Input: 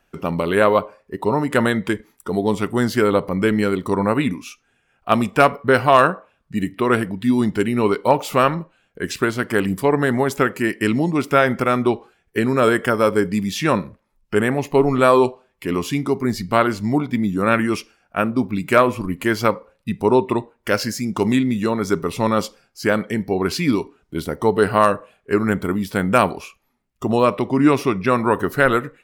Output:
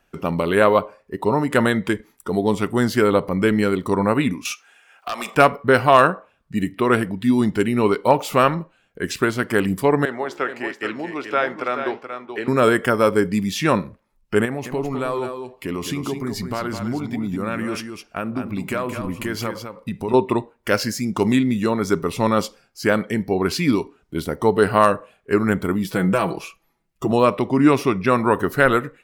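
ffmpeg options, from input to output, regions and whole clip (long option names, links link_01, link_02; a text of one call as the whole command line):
ffmpeg -i in.wav -filter_complex "[0:a]asettb=1/sr,asplit=3[link_01][link_02][link_03];[link_01]atrim=end=4.454[link_04];[link_02]atrim=start=4.45:end=5.35,asetpts=PTS-STARTPTS,afade=type=in:duration=0.004:curve=qsin,afade=type=out:start_time=0.896:duration=0.004:curve=qsin,highpass=770,acompressor=threshold=-33dB:ratio=5:attack=3.2:release=140:knee=1:detection=peak,aeval=exprs='0.106*sin(PI/2*2.82*val(0)/0.106)':channel_layout=same[link_05];[link_03]atrim=start=5.346[link_06];[link_04][link_05]acrossfade=duration=0.004:curve1=hsin:curve2=qsin[link_07];[link_07][link_06]acrossfade=duration=0.004:curve1=qsin:curve2=hsin,asettb=1/sr,asplit=3[link_08][link_09][link_10];[link_08]atrim=end=10.054[link_11];[link_09]atrim=start=10.05:end=12.48,asetpts=PTS-STARTPTS,afade=type=in:duration=0.004:curve=qsin,afade=type=out:start_time=2.426:duration=0.004:curve=qsin,acrossover=split=330 5700:gain=0.141 1 0.126[link_12][link_13][link_14];[link_12][link_13][link_14]amix=inputs=3:normalize=0,aecho=1:1:430:0.398,atrim=end_sample=107163,flanger=delay=6.4:depth=9.4:regen=-82:speed=1.5:shape=sinusoidal[link_15];[link_10]atrim=start=12.476[link_16];[link_11][link_15]acrossfade=duration=0.004:curve1=hsin:curve2=qsin[link_17];[link_17][link_16]acrossfade=duration=0.004:curve1=qsin:curve2=hsin,asettb=1/sr,asplit=3[link_18][link_19][link_20];[link_18]atrim=end=14.454[link_21];[link_19]atrim=start=14.45:end=20.14,asetpts=PTS-STARTPTS,afade=type=in:duration=0.004:curve=qsin,afade=type=out:start_time=5.686:duration=0.004:curve=qsin,acompressor=threshold=-22dB:ratio=4:attack=3.2:release=140:knee=1:detection=peak,aecho=1:1:208:0.422,atrim=end_sample=250929[link_22];[link_20]atrim=start=20.136[link_23];[link_21][link_22]acrossfade=duration=0.004:curve1=hsin:curve2=qsin[link_24];[link_24][link_23]acrossfade=duration=0.004:curve1=qsin:curve2=hsin,asettb=1/sr,asplit=3[link_25][link_26][link_27];[link_25]atrim=end=25.844[link_28];[link_26]atrim=start=25.84:end=27.12,asetpts=PTS-STARTPTS,afade=type=in:duration=0.004:curve=qsin,afade=type=out:start_time=1.276:duration=0.004:curve=qsin,equalizer=frequency=390:width=4:gain=4,acompressor=threshold=-15dB:ratio=6:attack=3.2:release=140:knee=1:detection=peak,aecho=1:1:6.1:0.68,atrim=end_sample=56448[link_29];[link_27]atrim=start=27.116[link_30];[link_28][link_29]acrossfade=duration=0.004:curve1=hsin:curve2=qsin[link_31];[link_31][link_30]acrossfade=duration=0.004:curve1=qsin:curve2=hsin" out.wav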